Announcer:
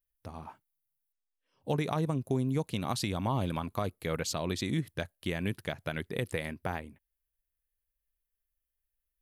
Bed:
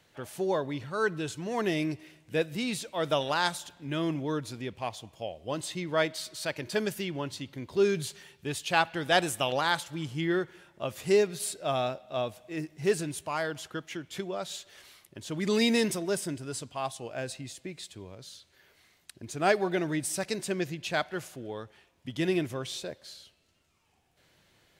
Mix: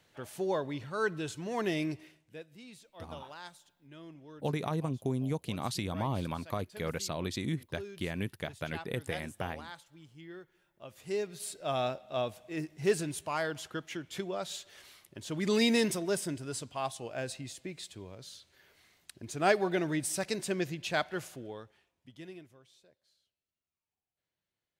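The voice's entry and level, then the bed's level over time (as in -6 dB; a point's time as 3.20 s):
2.75 s, -2.5 dB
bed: 2.04 s -3 dB
2.41 s -19.5 dB
10.47 s -19.5 dB
11.86 s -1.5 dB
21.33 s -1.5 dB
22.67 s -26.5 dB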